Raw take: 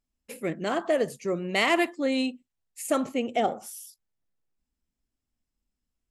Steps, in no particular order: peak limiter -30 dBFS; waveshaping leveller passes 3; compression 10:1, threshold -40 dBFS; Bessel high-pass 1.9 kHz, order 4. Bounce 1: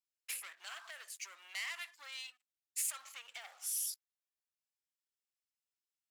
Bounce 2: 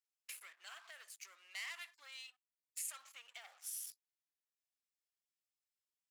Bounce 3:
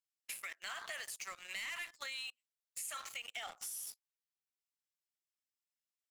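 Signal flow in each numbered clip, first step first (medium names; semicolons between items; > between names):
compression > waveshaping leveller > peak limiter > Bessel high-pass; waveshaping leveller > compression > peak limiter > Bessel high-pass; Bessel high-pass > waveshaping leveller > peak limiter > compression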